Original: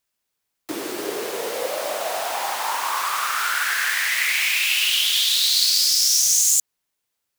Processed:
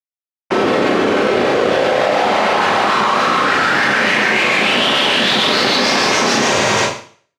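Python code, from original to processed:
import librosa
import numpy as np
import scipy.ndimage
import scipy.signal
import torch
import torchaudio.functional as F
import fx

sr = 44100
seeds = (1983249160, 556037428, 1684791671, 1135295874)

p1 = fx.fade_out_tail(x, sr, length_s=1.65)
p2 = fx.notch(p1, sr, hz=990.0, q=7.7)
p3 = fx.rider(p2, sr, range_db=5, speed_s=0.5)
p4 = p2 + (p3 * 10.0 ** (0.5 / 20.0))
p5 = fx.granulator(p4, sr, seeds[0], grain_ms=212.0, per_s=6.8, spray_ms=211.0, spread_st=0)
p6 = fx.schmitt(p5, sr, flips_db=-20.0)
p7 = fx.whisperise(p6, sr, seeds[1])
p8 = fx.bandpass_edges(p7, sr, low_hz=240.0, high_hz=3600.0)
p9 = p8 + fx.echo_feedback(p8, sr, ms=107, feedback_pct=45, wet_db=-20, dry=0)
p10 = fx.rev_schroeder(p9, sr, rt60_s=0.49, comb_ms=29, drr_db=-6.5)
p11 = fx.env_flatten(p10, sr, amount_pct=100)
y = p11 * 10.0 ** (-2.5 / 20.0)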